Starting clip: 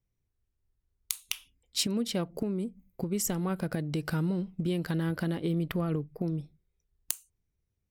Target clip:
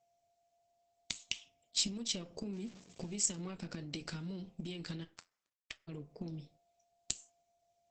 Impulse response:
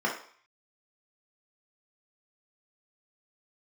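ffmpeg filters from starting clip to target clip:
-filter_complex "[0:a]asettb=1/sr,asplit=3[s0][s1][s2];[s0]atrim=end=2.534[s3];[s1]atrim=start=2.53:end=3.17,asetpts=PTS-STARTPTS,afade=t=in:d=0.004:c=qsin,afade=t=out:st=0.636:d=0.004:c=qsin,aeval=exprs='val(0)+0.5*0.00562*sgn(val(0))':c=same[s4];[s2]atrim=start=3.166[s5];[s3][s4]acrossfade=d=0.004:c1=hsin:c2=qsin[s6];[s6][s5]acrossfade=d=0.004:c1=qsin:c2=hsin,highpass=140,bandreject=f=259.4:t=h:w=4,bandreject=f=518.8:t=h:w=4,bandreject=f=778.2:t=h:w=4,bandreject=f=1037.6:t=h:w=4,asettb=1/sr,asplit=3[s7][s8][s9];[s7]atrim=end=1.234[s10];[s8]atrim=start=1.23:end=1.93,asetpts=PTS-STARTPTS,afade=t=in:d=0.004:c=qsin,afade=t=out:st=0.696:d=0.004:c=qsin,tiltshelf=f=710:g=5.5[s11];[s9]atrim=start=1.926[s12];[s10][s11]acrossfade=d=0.004:c1=hsin:c2=qsin[s13];[s13][s12]acrossfade=d=0.004:c1=qsin:c2=hsin,acompressor=threshold=0.0251:ratio=6,aeval=exprs='val(0)+0.000398*sin(2*PI*690*n/s)':c=same,aeval=exprs='(tanh(11.2*val(0)+0.65)-tanh(0.65))/11.2':c=same,aexciter=amount=4.3:drive=2.7:freq=2200,asplit=3[s14][s15][s16];[s14]afade=t=out:st=5.03:d=0.02[s17];[s15]acrusher=bits=3:mix=0:aa=0.5,afade=t=in:st=5.03:d=0.02,afade=t=out:st=5.87:d=0.02[s18];[s16]afade=t=in:st=5.87:d=0.02[s19];[s17][s18][s19]amix=inputs=3:normalize=0,flanger=delay=7.1:depth=4.9:regen=-69:speed=0.69:shape=sinusoidal,asplit=2[s20][s21];[1:a]atrim=start_sample=2205[s22];[s21][s22]afir=irnorm=-1:irlink=0,volume=0.0473[s23];[s20][s23]amix=inputs=2:normalize=0,volume=1.33" -ar 48000 -c:a libopus -b:a 12k

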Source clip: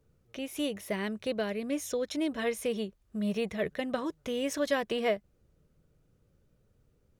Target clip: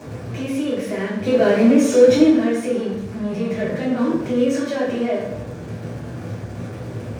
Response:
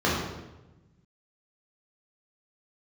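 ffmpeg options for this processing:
-filter_complex "[0:a]aeval=exprs='val(0)+0.5*0.0211*sgn(val(0))':c=same,alimiter=limit=0.0668:level=0:latency=1:release=38,asplit=3[s0][s1][s2];[s0]afade=t=out:st=1.25:d=0.02[s3];[s1]acontrast=81,afade=t=in:st=1.25:d=0.02,afade=t=out:st=2.28:d=0.02[s4];[s2]afade=t=in:st=2.28:d=0.02[s5];[s3][s4][s5]amix=inputs=3:normalize=0[s6];[1:a]atrim=start_sample=2205,asetrate=61740,aresample=44100[s7];[s6][s7]afir=irnorm=-1:irlink=0,volume=0.376"

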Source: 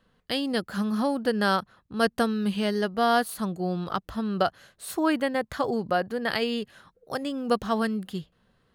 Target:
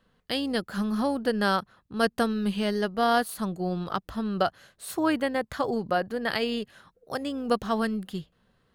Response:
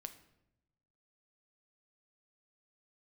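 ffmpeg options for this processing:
-af "tremolo=f=200:d=0.182"

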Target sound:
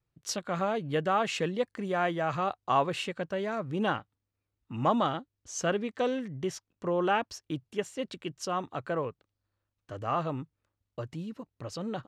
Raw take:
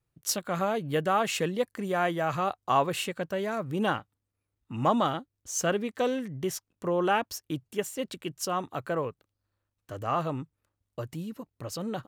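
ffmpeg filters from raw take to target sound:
-af "lowpass=5800,volume=0.841"

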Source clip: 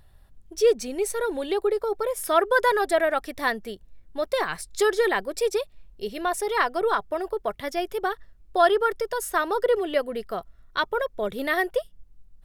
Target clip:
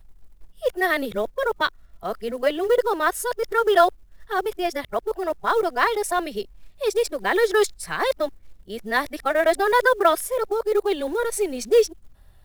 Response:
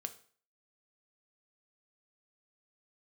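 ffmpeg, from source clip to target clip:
-af "areverse,acrusher=bits=7:mode=log:mix=0:aa=0.000001,volume=1.33"

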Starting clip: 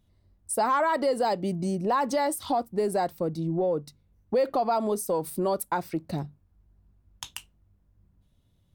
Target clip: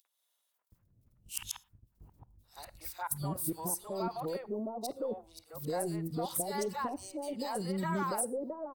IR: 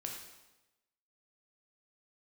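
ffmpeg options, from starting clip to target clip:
-filter_complex "[0:a]areverse,agate=range=0.02:threshold=0.00126:ratio=16:detection=peak,equalizer=f=120:w=5.5:g=7,acompressor=mode=upward:threshold=0.0141:ratio=2.5,crystalizer=i=1.5:c=0,acompressor=threshold=0.0398:ratio=6,aeval=exprs='0.631*(cos(1*acos(clip(val(0)/0.631,-1,1)))-cos(1*PI/2))+0.00708*(cos(8*acos(clip(val(0)/0.631,-1,1)))-cos(8*PI/2))':c=same,acrossover=split=690|2800[s0][s1][s2];[s1]adelay=50[s3];[s0]adelay=720[s4];[s4][s3][s2]amix=inputs=3:normalize=0,asplit=2[s5][s6];[1:a]atrim=start_sample=2205,afade=t=out:st=0.17:d=0.01,atrim=end_sample=7938[s7];[s6][s7]afir=irnorm=-1:irlink=0,volume=0.2[s8];[s5][s8]amix=inputs=2:normalize=0,volume=0.631"

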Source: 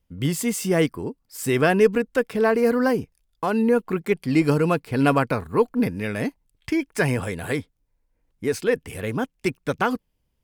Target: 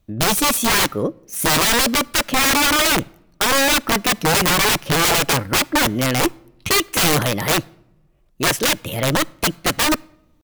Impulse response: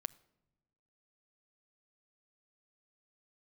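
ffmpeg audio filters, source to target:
-filter_complex "[0:a]asetrate=53981,aresample=44100,atempo=0.816958,aeval=exprs='(mod(10*val(0)+1,2)-1)/10':c=same,asplit=2[s0][s1];[1:a]atrim=start_sample=2205[s2];[s1][s2]afir=irnorm=-1:irlink=0,volume=1.58[s3];[s0][s3]amix=inputs=2:normalize=0,volume=1.26"

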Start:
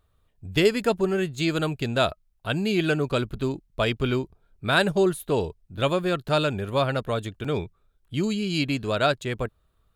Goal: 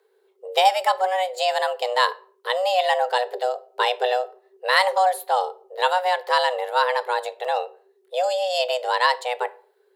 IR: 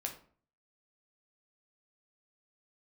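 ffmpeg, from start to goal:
-filter_complex "[0:a]afreqshift=370,asplit=2[s0][s1];[1:a]atrim=start_sample=2205,afade=t=out:st=0.36:d=0.01,atrim=end_sample=16317[s2];[s1][s2]afir=irnorm=-1:irlink=0,volume=0.422[s3];[s0][s3]amix=inputs=2:normalize=0"

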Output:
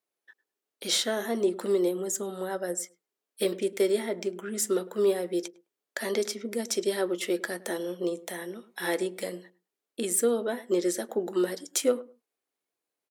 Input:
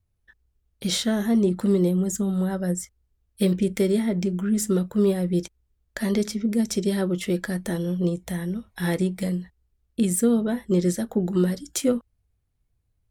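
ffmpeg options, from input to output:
-filter_complex "[0:a]asettb=1/sr,asplit=3[s0][s1][s2];[s0]atrim=end=3.444[s3];[s1]atrim=start=3.44:end=4.48,asetpts=PTS-STARTPTS,afade=t=in:d=0.004:c=qsin,afade=t=out:st=1.036:d=0.004:c=qsin,agate=range=0.0224:threshold=0.0562:ratio=3:detection=peak[s4];[s2]atrim=start=4.476[s5];[s3][s4]acrossfade=d=0.004:c1=hsin:c2=qsin[s6];[s6][s5]acrossfade=d=0.004:c1=qsin:c2=hsin,highpass=f=330:w=0.5412,highpass=f=330:w=1.3066,asplit=2[s7][s8];[s8]adelay=104,lowpass=f=970:p=1,volume=0.141,asplit=2[s9][s10];[s10]adelay=104,lowpass=f=970:p=1,volume=0.2[s11];[s9][s11]amix=inputs=2:normalize=0[s12];[s7][s12]amix=inputs=2:normalize=0"

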